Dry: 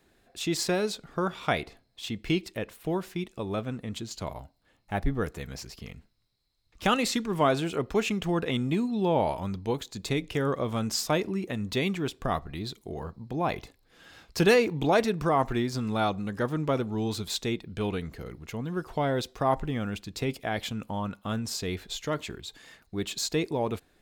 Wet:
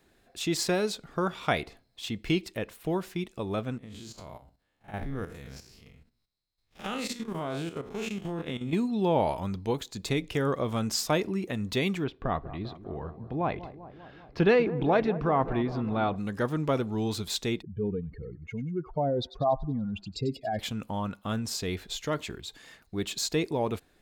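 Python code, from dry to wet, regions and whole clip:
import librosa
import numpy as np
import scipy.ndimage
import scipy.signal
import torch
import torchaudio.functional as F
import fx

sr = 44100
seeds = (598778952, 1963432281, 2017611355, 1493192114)

y = fx.chain(x, sr, fx.spec_blur(span_ms=104.0),
    fx.hum_notches(base_hz=60, count=8),
    fx.level_steps(step_db=11), at=(3.78, 8.73))
y = fx.chain(y, sr, fx.air_absorb(metres=320.0),
    fx.echo_wet_lowpass(ms=197, feedback_pct=67, hz=1100.0, wet_db=-14), at=(12.04, 16.16))
y = fx.chain(y, sr, fx.spec_expand(power=2.5),
    fx.echo_wet_highpass(ms=95, feedback_pct=51, hz=1700.0, wet_db=-12.5), at=(17.62, 20.59))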